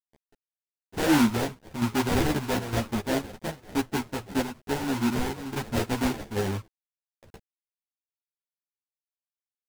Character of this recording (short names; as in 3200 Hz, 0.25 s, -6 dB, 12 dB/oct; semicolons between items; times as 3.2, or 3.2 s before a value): aliases and images of a low sample rate 1200 Hz, jitter 20%; chopped level 1.1 Hz, depth 60%, duty 85%; a quantiser's noise floor 10-bit, dither none; a shimmering, thickened sound